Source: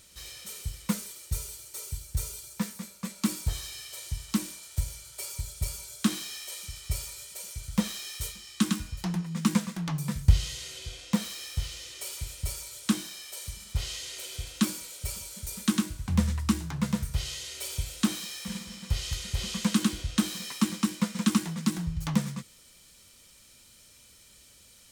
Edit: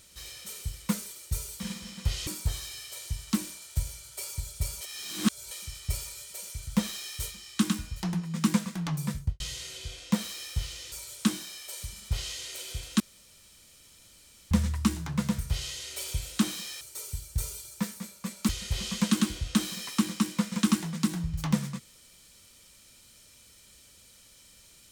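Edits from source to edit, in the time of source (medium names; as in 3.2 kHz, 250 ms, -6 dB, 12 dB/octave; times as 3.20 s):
1.60–3.28 s: swap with 18.45–19.12 s
5.82–6.52 s: reverse
10.10–10.41 s: studio fade out
11.93–12.56 s: delete
14.64–16.15 s: room tone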